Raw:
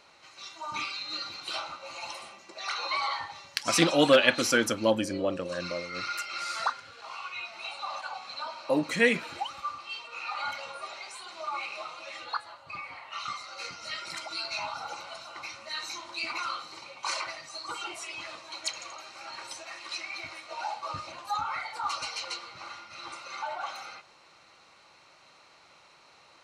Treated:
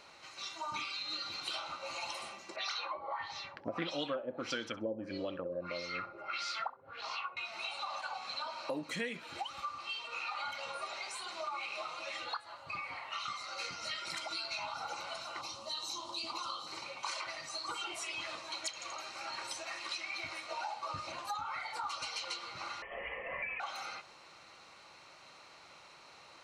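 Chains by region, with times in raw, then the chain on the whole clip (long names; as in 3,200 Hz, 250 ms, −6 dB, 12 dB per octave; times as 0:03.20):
0:02.56–0:07.37: auto-filter low-pass sine 1.6 Hz 440–5,700 Hz + flutter between parallel walls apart 11.2 metres, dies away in 0.21 s
0:15.41–0:16.67: flat-topped bell 1,900 Hz −16 dB 1 octave + notch filter 690 Hz, Q 22
0:22.82–0:23.60: voice inversion scrambler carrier 3,200 Hz + parametric band 560 Hz +12.5 dB 0.37 octaves
whole clip: dynamic equaliser 3,300 Hz, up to +5 dB, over −50 dBFS, Q 5.2; downward compressor 5 to 1, threshold −38 dBFS; level +1 dB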